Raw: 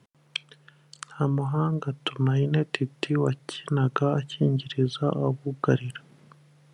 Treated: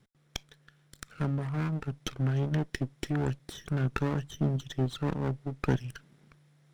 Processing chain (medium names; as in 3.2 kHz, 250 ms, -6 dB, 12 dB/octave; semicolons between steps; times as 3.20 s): comb filter that takes the minimum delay 0.54 ms; trim -5.5 dB